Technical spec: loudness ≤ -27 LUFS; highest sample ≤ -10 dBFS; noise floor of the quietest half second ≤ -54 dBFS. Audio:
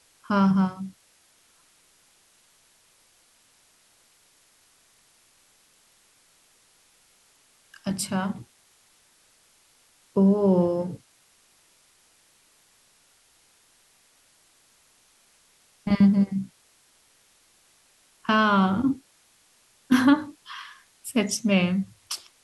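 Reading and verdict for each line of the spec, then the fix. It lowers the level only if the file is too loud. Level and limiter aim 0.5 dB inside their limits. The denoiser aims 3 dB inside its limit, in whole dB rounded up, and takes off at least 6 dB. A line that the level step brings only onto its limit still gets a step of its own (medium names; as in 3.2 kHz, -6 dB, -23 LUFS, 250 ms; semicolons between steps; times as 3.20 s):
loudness -23.5 LUFS: fail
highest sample -8.0 dBFS: fail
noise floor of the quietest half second -62 dBFS: pass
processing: trim -4 dB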